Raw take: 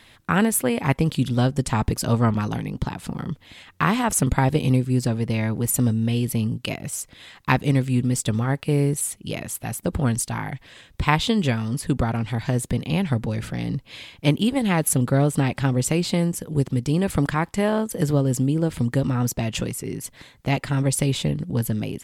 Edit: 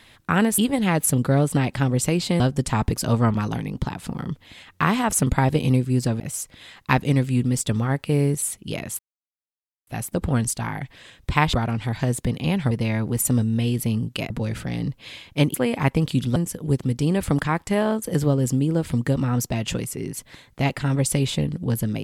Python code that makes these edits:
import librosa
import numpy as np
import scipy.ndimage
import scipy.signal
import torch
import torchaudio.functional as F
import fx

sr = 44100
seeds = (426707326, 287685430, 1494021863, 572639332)

y = fx.edit(x, sr, fx.swap(start_s=0.58, length_s=0.82, other_s=14.41, other_length_s=1.82),
    fx.move(start_s=5.2, length_s=1.59, to_s=13.17),
    fx.insert_silence(at_s=9.58, length_s=0.88),
    fx.cut(start_s=11.24, length_s=0.75), tone=tone)